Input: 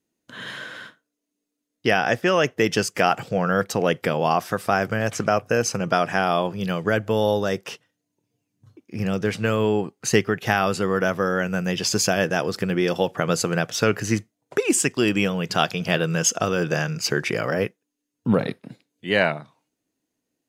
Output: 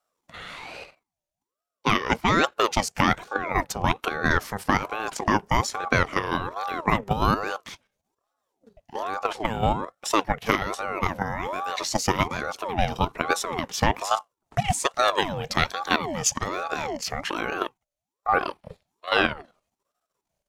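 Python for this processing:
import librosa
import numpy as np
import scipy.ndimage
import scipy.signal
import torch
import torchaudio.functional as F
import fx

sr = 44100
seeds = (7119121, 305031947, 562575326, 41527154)

y = fx.level_steps(x, sr, step_db=10)
y = fx.ring_lfo(y, sr, carrier_hz=640.0, swing_pct=55, hz=1.2)
y = y * 10.0 ** (3.5 / 20.0)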